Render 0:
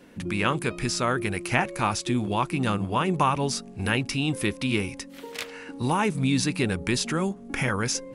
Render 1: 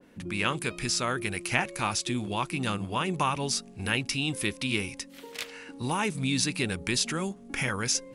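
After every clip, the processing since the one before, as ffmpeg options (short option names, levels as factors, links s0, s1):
-af "adynamicequalizer=threshold=0.01:dfrequency=1900:dqfactor=0.7:tfrequency=1900:tqfactor=0.7:attack=5:release=100:ratio=0.375:range=3.5:mode=boostabove:tftype=highshelf,volume=0.531"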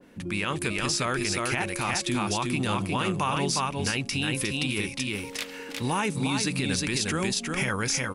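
-af "aecho=1:1:358:0.631,alimiter=limit=0.106:level=0:latency=1:release=36,volume=1.41"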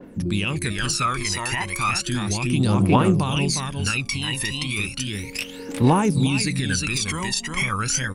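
-af "aphaser=in_gain=1:out_gain=1:delay=1.1:decay=0.78:speed=0.34:type=triangular"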